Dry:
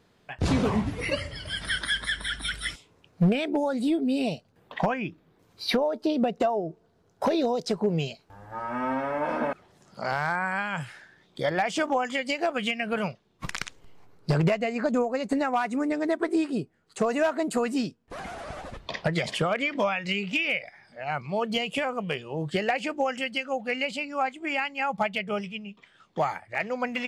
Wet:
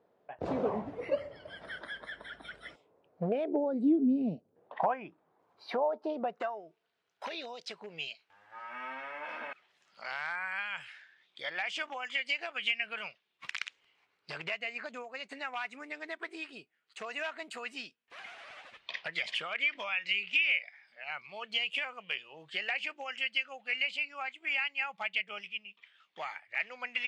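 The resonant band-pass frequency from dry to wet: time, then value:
resonant band-pass, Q 1.8
0:03.37 590 Hz
0:04.23 190 Hz
0:04.79 850 Hz
0:06.18 850 Hz
0:06.68 2,600 Hz

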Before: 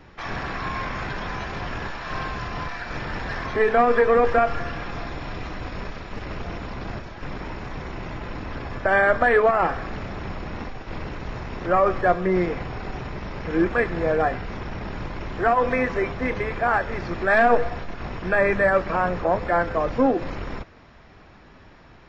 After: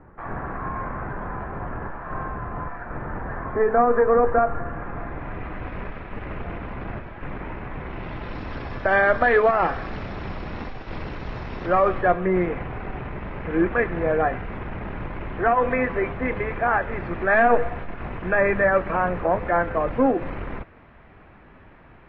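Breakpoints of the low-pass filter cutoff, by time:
low-pass filter 24 dB per octave
0:04.64 1,500 Hz
0:05.69 2,600 Hz
0:07.77 2,600 Hz
0:08.41 5,000 Hz
0:11.65 5,000 Hz
0:12.21 2,700 Hz

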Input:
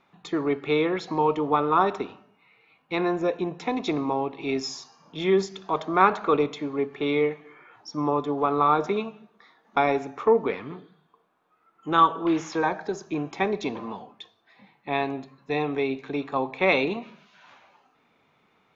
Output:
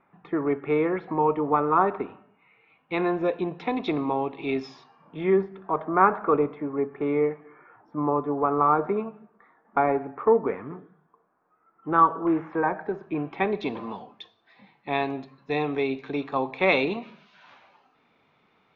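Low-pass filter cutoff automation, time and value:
low-pass filter 24 dB per octave
0:01.91 2,100 Hz
0:03.28 3,800 Hz
0:04.59 3,800 Hz
0:05.48 1,800 Hz
0:12.52 1,800 Hz
0:13.24 2,700 Hz
0:13.92 5,400 Hz

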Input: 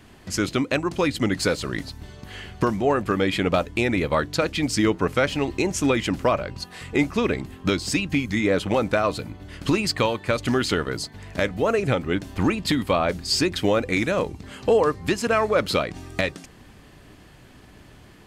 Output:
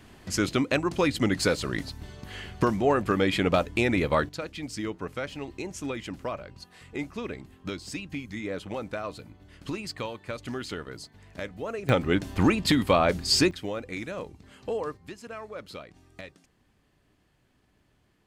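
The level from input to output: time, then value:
−2 dB
from 0:04.29 −12.5 dB
from 0:11.89 0 dB
from 0:13.51 −12.5 dB
from 0:14.97 −19 dB

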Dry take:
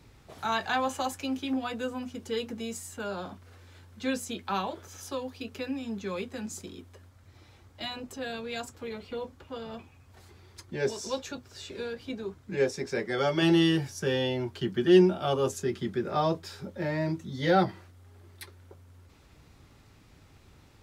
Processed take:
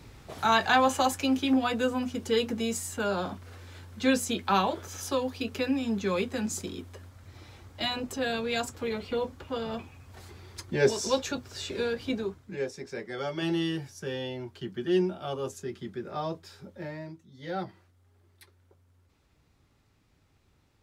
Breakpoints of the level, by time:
0:12.17 +6 dB
0:12.62 −6.5 dB
0:16.84 −6.5 dB
0:17.27 −17 dB
0:17.57 −10.5 dB

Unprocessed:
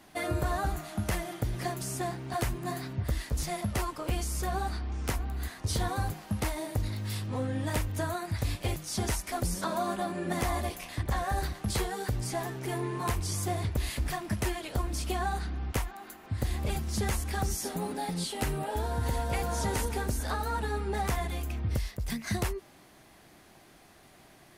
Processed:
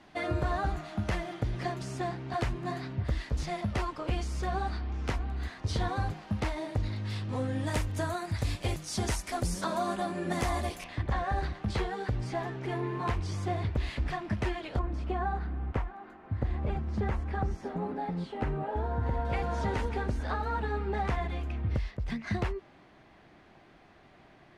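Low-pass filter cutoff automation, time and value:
4,300 Hz
from 0:07.29 8,800 Hz
from 0:10.84 3,300 Hz
from 0:14.79 1,600 Hz
from 0:19.25 2,900 Hz

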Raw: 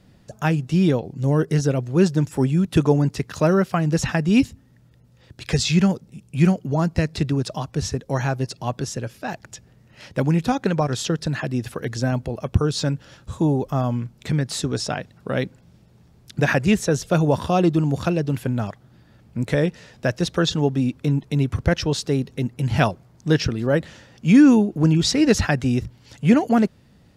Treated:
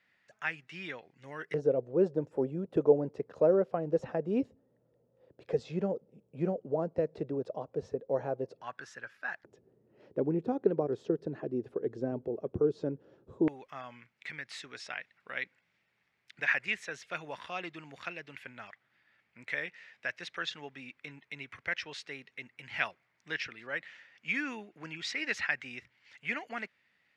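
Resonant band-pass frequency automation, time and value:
resonant band-pass, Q 3.6
2,000 Hz
from 0:01.54 500 Hz
from 0:08.61 1,600 Hz
from 0:09.44 400 Hz
from 0:13.48 2,100 Hz

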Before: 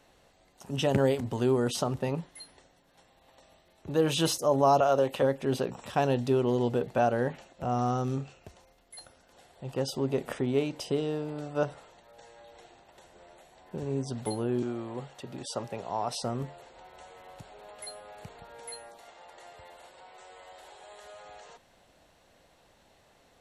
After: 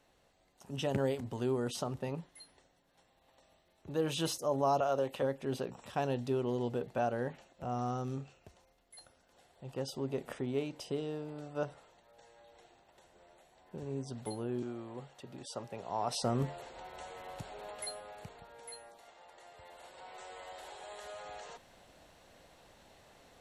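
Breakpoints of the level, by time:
0:15.68 −7.5 dB
0:16.49 +3 dB
0:17.66 +3 dB
0:18.54 −6 dB
0:19.49 −6 dB
0:20.13 +2 dB

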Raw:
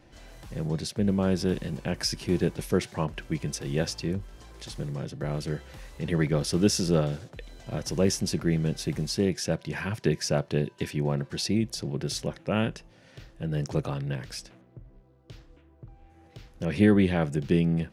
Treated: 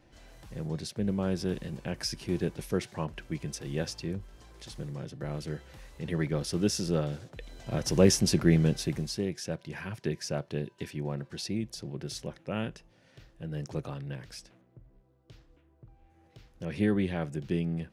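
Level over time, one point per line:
0:07.01 −5 dB
0:08.00 +3 dB
0:08.61 +3 dB
0:09.25 −7 dB

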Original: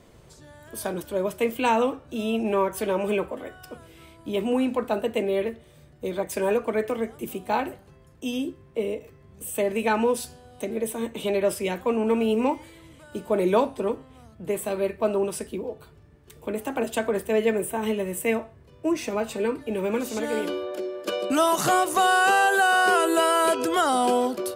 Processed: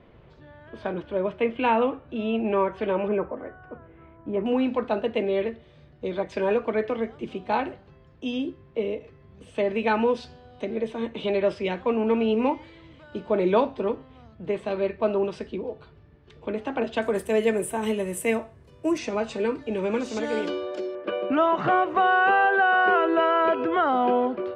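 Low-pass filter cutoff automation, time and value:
low-pass filter 24 dB per octave
3,100 Hz
from 0:03.08 1,800 Hz
from 0:04.46 4,400 Hz
from 0:17.02 12,000 Hz
from 0:18.98 6,300 Hz
from 0:20.95 2,500 Hz

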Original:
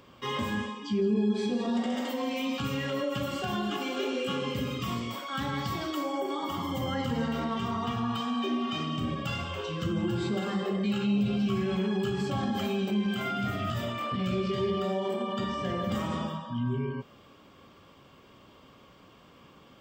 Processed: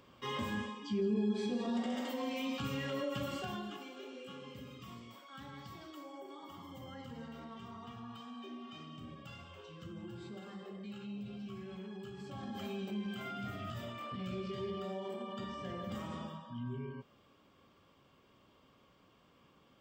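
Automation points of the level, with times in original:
0:03.35 −6.5 dB
0:03.95 −17.5 dB
0:12.17 −17.5 dB
0:12.67 −11 dB

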